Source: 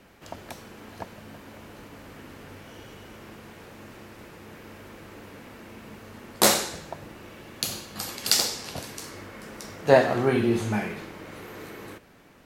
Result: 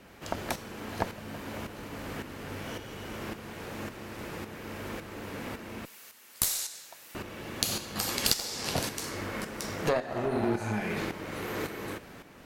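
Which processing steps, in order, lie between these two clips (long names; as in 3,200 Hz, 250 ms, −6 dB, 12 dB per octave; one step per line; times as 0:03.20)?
0:05.85–0:07.15: first difference
0:10.18–0:10.69: healed spectral selection 510–3,800 Hz
downward compressor 12 to 1, threshold −31 dBFS, peak gain reduction 21 dB
harmonic generator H 8 −20 dB, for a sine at −9 dBFS
shaped tremolo saw up 1.8 Hz, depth 60%
level +8 dB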